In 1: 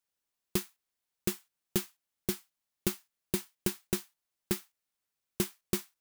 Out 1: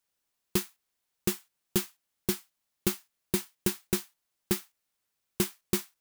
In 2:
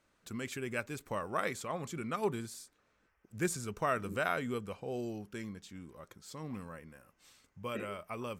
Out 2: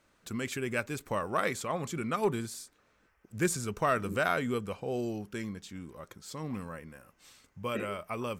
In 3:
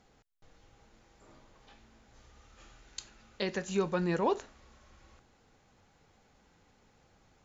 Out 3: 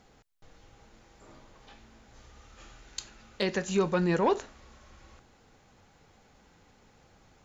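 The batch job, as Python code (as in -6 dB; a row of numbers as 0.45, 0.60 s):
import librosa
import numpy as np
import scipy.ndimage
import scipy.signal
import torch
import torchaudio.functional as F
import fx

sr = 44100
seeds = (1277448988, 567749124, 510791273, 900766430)

y = 10.0 ** (-20.0 / 20.0) * np.tanh(x / 10.0 ** (-20.0 / 20.0))
y = F.gain(torch.from_numpy(y), 5.0).numpy()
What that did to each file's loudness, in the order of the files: +3.5, +4.5, +4.0 LU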